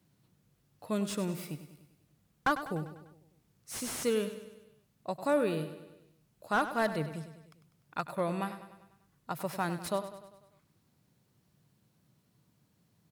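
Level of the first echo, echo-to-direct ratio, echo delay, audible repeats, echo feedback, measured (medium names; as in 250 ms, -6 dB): -12.0 dB, -10.5 dB, 99 ms, 5, 55%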